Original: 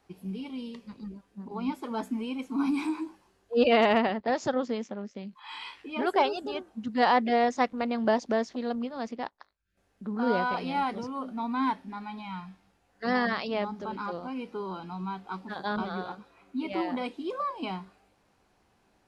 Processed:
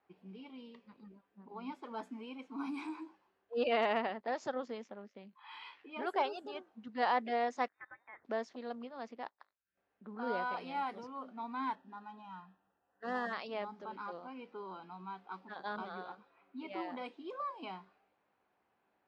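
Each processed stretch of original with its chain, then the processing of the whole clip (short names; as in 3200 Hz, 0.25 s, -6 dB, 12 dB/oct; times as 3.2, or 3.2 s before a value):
7.68–8.25 elliptic high-pass 2000 Hz, stop band 50 dB + inverted band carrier 3900 Hz
11.75–13.33 median filter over 9 samples + Butterworth band-stop 2200 Hz, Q 3.8 + air absorption 94 m
whole clip: HPF 560 Hz 6 dB/oct; low-pass opened by the level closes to 2900 Hz, open at -28 dBFS; high shelf 3400 Hz -8.5 dB; gain -6 dB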